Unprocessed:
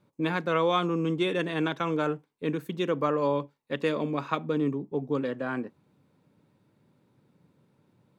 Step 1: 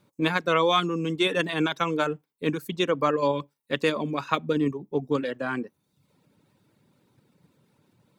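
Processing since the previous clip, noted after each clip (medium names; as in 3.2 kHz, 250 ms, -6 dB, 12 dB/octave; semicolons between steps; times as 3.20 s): reverb removal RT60 0.69 s; treble shelf 2.4 kHz +8 dB; in parallel at +1 dB: level held to a coarse grid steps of 9 dB; on the sum: trim -2 dB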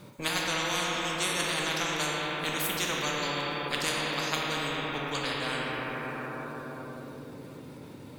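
simulated room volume 140 m³, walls hard, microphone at 0.52 m; spectrum-flattening compressor 4:1; trim -7.5 dB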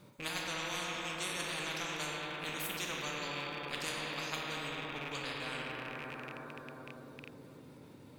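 rattle on loud lows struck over -40 dBFS, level -23 dBFS; trim -9 dB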